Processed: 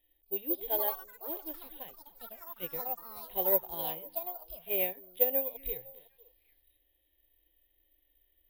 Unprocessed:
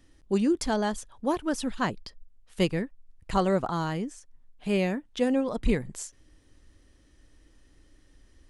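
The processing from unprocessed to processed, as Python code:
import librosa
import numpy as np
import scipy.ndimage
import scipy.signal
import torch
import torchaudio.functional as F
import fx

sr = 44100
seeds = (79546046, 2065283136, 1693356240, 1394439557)

p1 = scipy.signal.sosfilt(scipy.signal.cheby1(8, 1.0, 3800.0, 'lowpass', fs=sr, output='sos'), x)
p2 = fx.low_shelf(p1, sr, hz=330.0, db=-10.0)
p3 = fx.hpss(p2, sr, part='percussive', gain_db=-14)
p4 = fx.high_shelf(p3, sr, hz=2100.0, db=8.5)
p5 = fx.fixed_phaser(p4, sr, hz=540.0, stages=4)
p6 = fx.echo_pitch(p5, sr, ms=262, semitones=5, count=3, db_per_echo=-6.0)
p7 = p6 + fx.echo_stepped(p6, sr, ms=253, hz=260.0, octaves=1.4, feedback_pct=70, wet_db=-11.0, dry=0)
p8 = (np.kron(p7[::3], np.eye(3)[0]) * 3)[:len(p7)]
y = fx.upward_expand(p8, sr, threshold_db=-37.0, expansion=1.5)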